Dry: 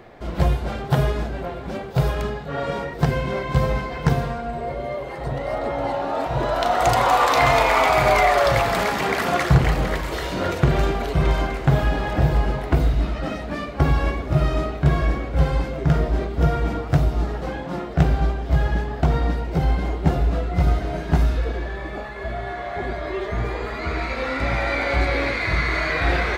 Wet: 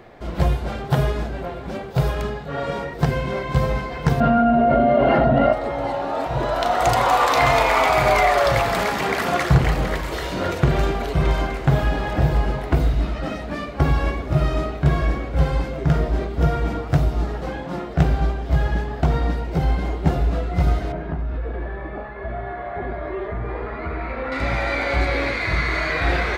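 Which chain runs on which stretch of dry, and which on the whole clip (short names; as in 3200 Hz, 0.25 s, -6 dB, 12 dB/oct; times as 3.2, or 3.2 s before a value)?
4.2–5.53 air absorption 220 m + small resonant body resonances 240/660/1400/2800 Hz, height 17 dB, ringing for 55 ms + fast leveller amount 100%
20.92–24.32 LPF 1800 Hz + compressor 5:1, threshold -22 dBFS
whole clip: dry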